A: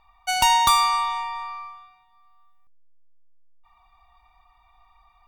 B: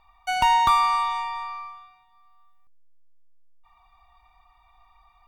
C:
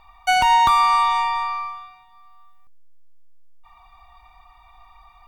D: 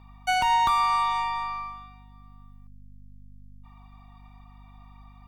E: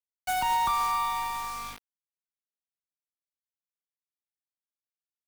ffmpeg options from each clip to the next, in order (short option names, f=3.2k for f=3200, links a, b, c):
-filter_complex "[0:a]acrossover=split=2800[a][b];[b]acompressor=threshold=-39dB:ratio=4:attack=1:release=60[c];[a][c]amix=inputs=2:normalize=0"
-af "alimiter=limit=-17dB:level=0:latency=1:release=313,volume=8.5dB"
-af "aeval=exprs='val(0)+0.00794*(sin(2*PI*50*n/s)+sin(2*PI*2*50*n/s)/2+sin(2*PI*3*50*n/s)/3+sin(2*PI*4*50*n/s)/4+sin(2*PI*5*50*n/s)/5)':c=same,volume=-6.5dB"
-filter_complex "[0:a]acrossover=split=170|460|1900[a][b][c][d];[d]aeval=exprs='(mod(25.1*val(0)+1,2)-1)/25.1':c=same[e];[a][b][c][e]amix=inputs=4:normalize=0,acrusher=bits=5:mix=0:aa=0.000001,volume=-4dB"